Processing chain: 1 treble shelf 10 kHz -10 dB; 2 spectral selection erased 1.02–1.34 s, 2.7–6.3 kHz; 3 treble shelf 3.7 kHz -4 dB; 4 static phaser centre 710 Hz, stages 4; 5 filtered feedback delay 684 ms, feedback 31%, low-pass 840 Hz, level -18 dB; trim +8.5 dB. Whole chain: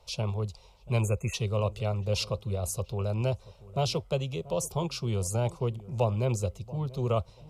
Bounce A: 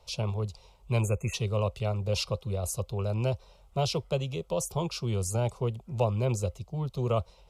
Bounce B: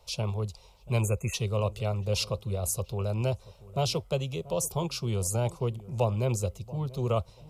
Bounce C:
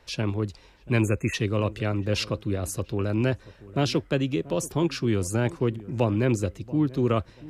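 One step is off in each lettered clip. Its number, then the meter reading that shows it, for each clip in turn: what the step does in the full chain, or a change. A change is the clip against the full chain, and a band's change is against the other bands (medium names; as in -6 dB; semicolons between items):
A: 5, echo-to-direct -23.0 dB to none; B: 1, 8 kHz band +3.5 dB; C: 4, 250 Hz band +8.5 dB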